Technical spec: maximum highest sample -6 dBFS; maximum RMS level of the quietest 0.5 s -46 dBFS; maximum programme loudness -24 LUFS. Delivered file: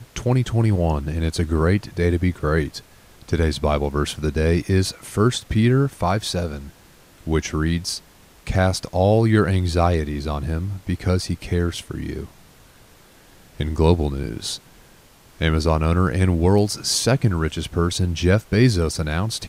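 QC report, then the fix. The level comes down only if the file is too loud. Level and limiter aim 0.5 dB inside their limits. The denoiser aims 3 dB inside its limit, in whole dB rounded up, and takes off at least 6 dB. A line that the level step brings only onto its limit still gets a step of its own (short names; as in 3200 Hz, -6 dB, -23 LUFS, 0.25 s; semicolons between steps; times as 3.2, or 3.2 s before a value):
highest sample -3.0 dBFS: fail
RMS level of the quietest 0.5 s -50 dBFS: OK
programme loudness -21.0 LUFS: fail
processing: gain -3.5 dB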